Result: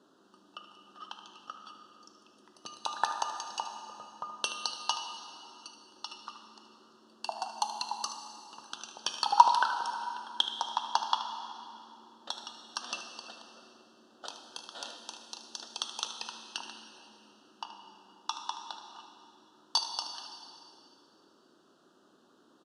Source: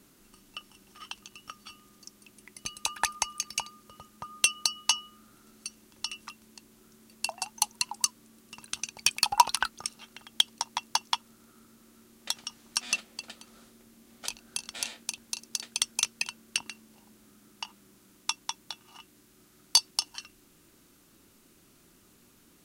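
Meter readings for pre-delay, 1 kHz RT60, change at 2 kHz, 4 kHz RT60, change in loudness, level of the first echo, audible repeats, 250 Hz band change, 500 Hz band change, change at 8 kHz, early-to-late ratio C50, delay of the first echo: 7 ms, 2.6 s, -6.0 dB, 2.4 s, -4.0 dB, -12.5 dB, 1, -3.5 dB, +3.0 dB, -12.0 dB, 5.5 dB, 76 ms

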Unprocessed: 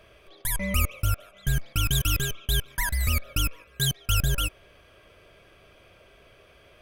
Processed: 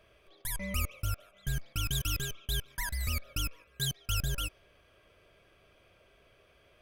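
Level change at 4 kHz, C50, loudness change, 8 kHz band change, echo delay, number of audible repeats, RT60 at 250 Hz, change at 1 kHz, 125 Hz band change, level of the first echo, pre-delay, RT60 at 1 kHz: -7.0 dB, none, -8.0 dB, -7.5 dB, none, none, none, -8.5 dB, -8.5 dB, none, none, none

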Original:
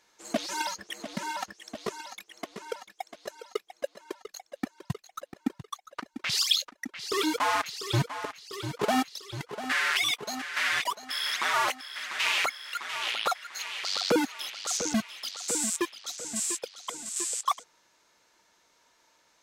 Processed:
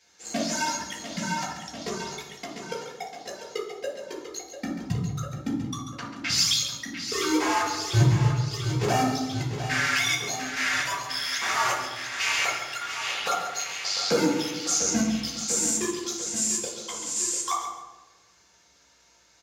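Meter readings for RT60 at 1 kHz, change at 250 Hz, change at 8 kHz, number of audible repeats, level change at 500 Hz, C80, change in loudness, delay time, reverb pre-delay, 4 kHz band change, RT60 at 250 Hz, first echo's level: 1.0 s, +5.0 dB, +6.0 dB, 1, +3.0 dB, 5.5 dB, +3.5 dB, 0.138 s, 3 ms, +1.5 dB, 1.6 s, -8.5 dB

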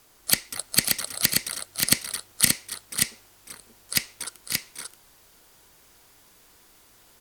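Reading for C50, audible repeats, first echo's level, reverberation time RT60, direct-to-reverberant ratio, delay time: none, 2, -10.5 dB, none, none, 0.549 s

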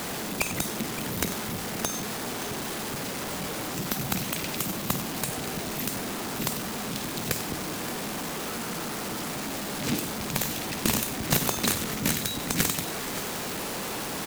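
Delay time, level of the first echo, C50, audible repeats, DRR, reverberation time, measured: 51 ms, -12.0 dB, none, 3, none, none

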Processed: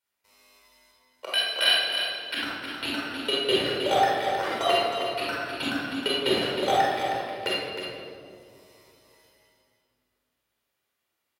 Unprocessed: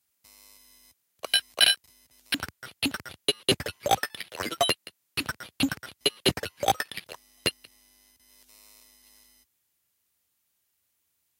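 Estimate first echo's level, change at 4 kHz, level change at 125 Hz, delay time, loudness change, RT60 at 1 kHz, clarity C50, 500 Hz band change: -7.5 dB, +1.0 dB, -3.0 dB, 0.314 s, +1.5 dB, 1.9 s, -3.5 dB, +6.5 dB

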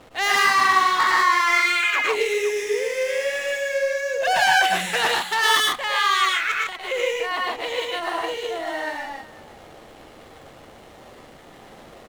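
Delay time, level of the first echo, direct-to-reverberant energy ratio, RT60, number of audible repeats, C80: 66 ms, -15.0 dB, none, none, 4, none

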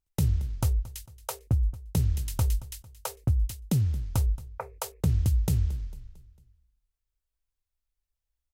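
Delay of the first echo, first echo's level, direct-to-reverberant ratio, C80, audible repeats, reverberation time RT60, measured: 0.225 s, -19.0 dB, none, none, 3, none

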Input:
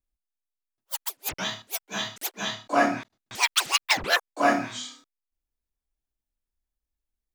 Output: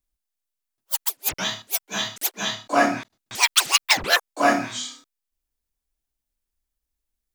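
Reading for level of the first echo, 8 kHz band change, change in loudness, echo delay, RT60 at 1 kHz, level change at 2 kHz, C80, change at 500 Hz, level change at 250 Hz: none, +6.5 dB, +4.5 dB, none, none, +3.5 dB, none, +2.5 dB, +2.5 dB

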